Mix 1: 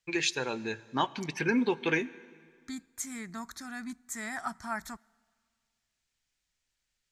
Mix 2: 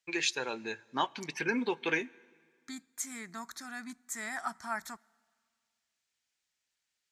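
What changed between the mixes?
first voice: send -7.0 dB; master: add HPF 370 Hz 6 dB/oct

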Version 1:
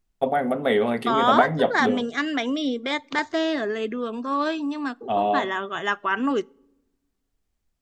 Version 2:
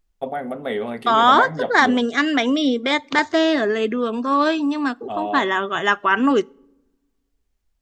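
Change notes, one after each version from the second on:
first voice -4.5 dB; second voice +6.5 dB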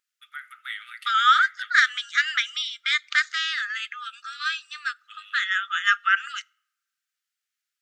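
master: add brick-wall FIR high-pass 1200 Hz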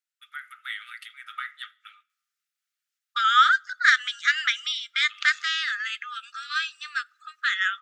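second voice: entry +2.10 s

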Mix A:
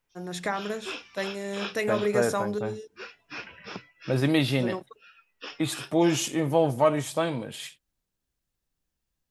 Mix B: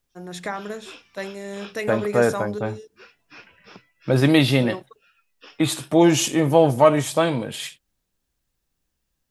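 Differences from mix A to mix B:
second voice +7.0 dB; background -6.5 dB

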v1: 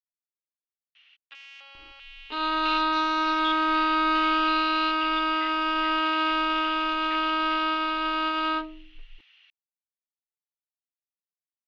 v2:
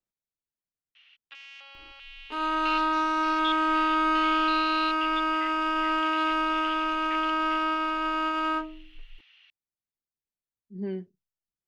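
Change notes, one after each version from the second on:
speech: unmuted; second sound: remove synth low-pass 4000 Hz, resonance Q 4.1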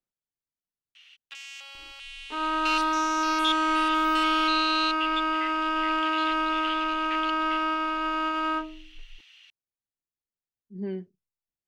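first sound: remove air absorption 250 m

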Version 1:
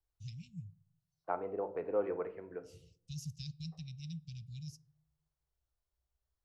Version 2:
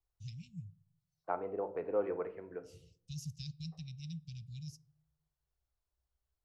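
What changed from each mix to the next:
none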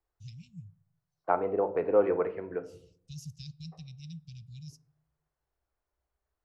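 second voice +9.5 dB

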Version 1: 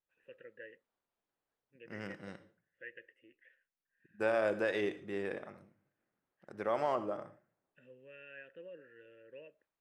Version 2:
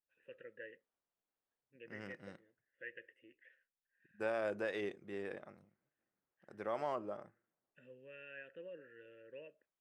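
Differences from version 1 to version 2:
second voice -3.5 dB; reverb: off

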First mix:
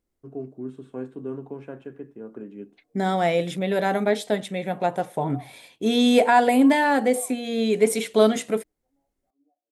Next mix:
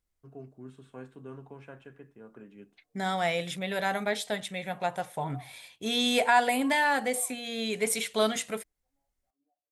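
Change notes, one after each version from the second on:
master: add bell 320 Hz -13.5 dB 2.2 oct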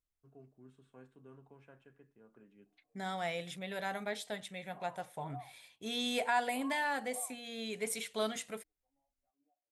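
first voice -12.0 dB; second voice -9.0 dB

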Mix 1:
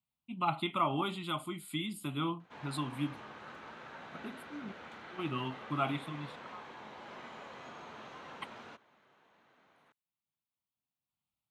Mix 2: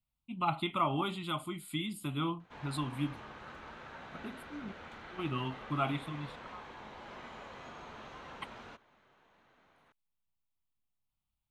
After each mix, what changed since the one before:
master: remove HPF 130 Hz 12 dB/oct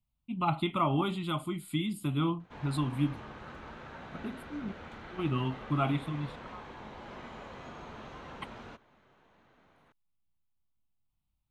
master: add low shelf 480 Hz +7 dB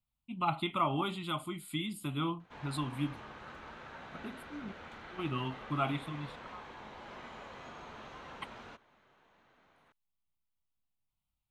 master: add low shelf 480 Hz -7 dB

